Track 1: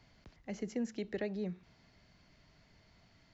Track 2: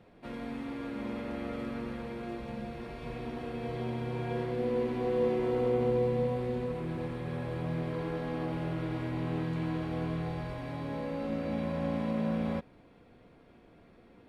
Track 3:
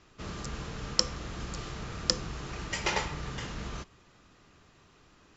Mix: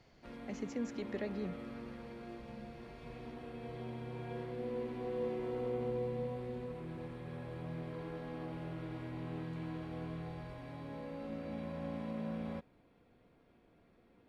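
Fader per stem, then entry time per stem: -2.5 dB, -9.0 dB, off; 0.00 s, 0.00 s, off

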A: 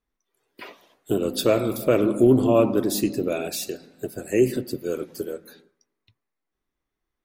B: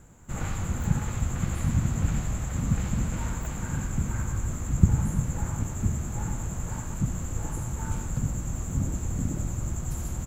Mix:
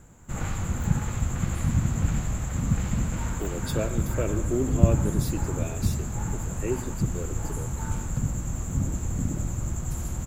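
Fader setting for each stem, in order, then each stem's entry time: -10.5, +1.0 dB; 2.30, 0.00 s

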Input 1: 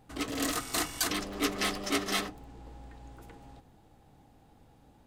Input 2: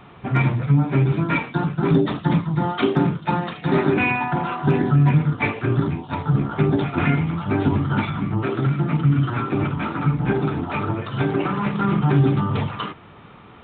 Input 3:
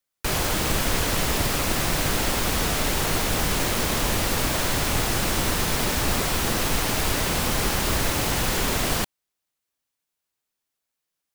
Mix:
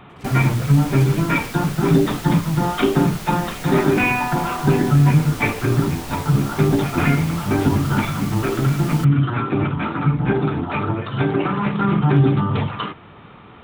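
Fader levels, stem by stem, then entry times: -14.5, +2.0, -10.0 dB; 0.00, 0.00, 0.00 s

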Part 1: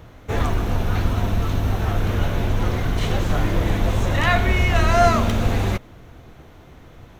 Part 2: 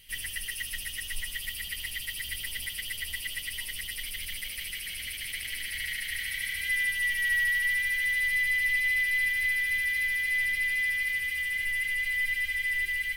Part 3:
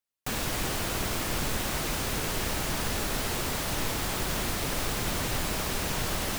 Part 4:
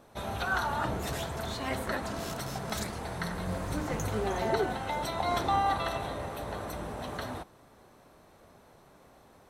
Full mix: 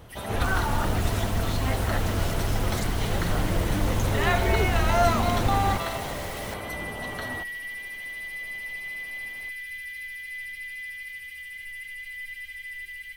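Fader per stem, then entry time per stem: -6.0, -9.0, -8.5, +1.5 dB; 0.00, 0.00, 0.15, 0.00 s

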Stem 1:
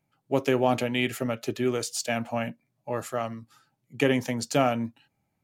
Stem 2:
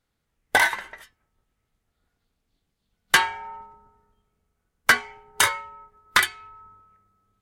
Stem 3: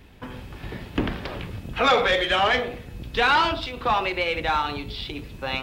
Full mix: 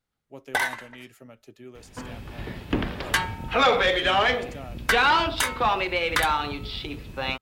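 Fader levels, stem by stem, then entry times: -18.5, -6.0, -0.5 dB; 0.00, 0.00, 1.75 s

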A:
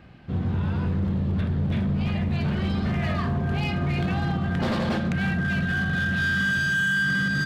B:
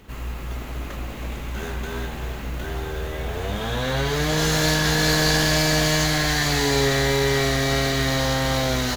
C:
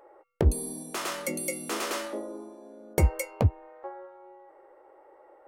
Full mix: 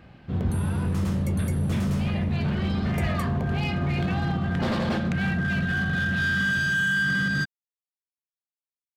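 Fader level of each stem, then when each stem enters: -0.5 dB, off, -10.0 dB; 0.00 s, off, 0.00 s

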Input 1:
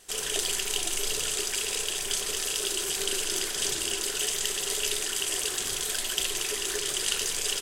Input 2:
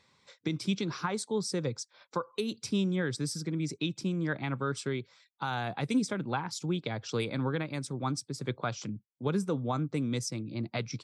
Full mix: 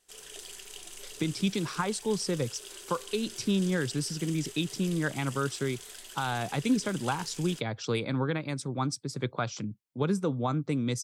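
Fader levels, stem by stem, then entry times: -16.0, +2.0 dB; 0.00, 0.75 s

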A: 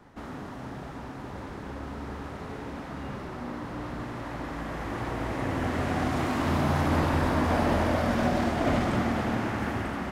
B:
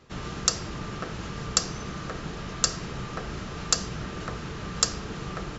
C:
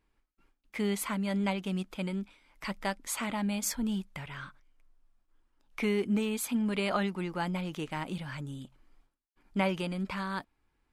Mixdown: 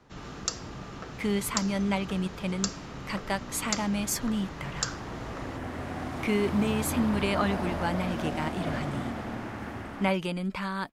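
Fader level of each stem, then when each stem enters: -7.5, -7.5, +2.5 dB; 0.00, 0.00, 0.45 s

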